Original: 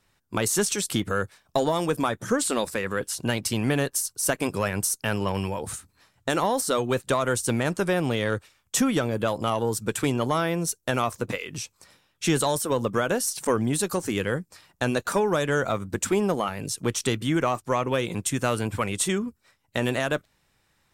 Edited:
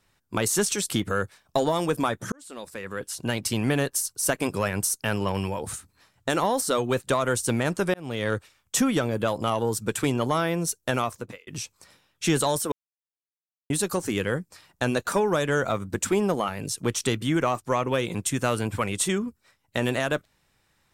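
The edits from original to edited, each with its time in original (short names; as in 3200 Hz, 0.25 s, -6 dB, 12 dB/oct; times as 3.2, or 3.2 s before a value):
2.32–3.5 fade in
7.94–8.29 fade in
10.95–11.47 fade out
12.72–13.7 mute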